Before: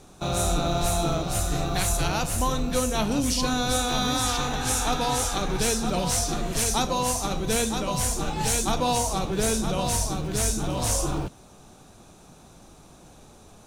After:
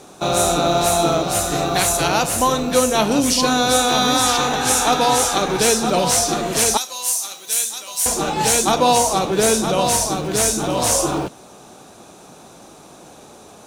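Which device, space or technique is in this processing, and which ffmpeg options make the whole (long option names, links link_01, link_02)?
filter by subtraction: -filter_complex "[0:a]asplit=2[link_01][link_02];[link_02]lowpass=440,volume=-1[link_03];[link_01][link_03]amix=inputs=2:normalize=0,asettb=1/sr,asplit=3[link_04][link_05][link_06];[link_04]atrim=end=6.774[link_07];[link_05]atrim=start=6.77:end=8.06,asetpts=PTS-STARTPTS,afade=type=in:duration=0.004:curve=qsin,afade=type=out:start_time=1.286:duration=0.004:curve=qsin,aderivative[link_08];[link_06]atrim=start=8.056[link_09];[link_07][link_08]acrossfade=duration=0.004:curve1=hsin:curve2=qsin[link_10];[link_10][link_09]acrossfade=duration=0.004:curve1=qsin:curve2=hsin,volume=8.5dB"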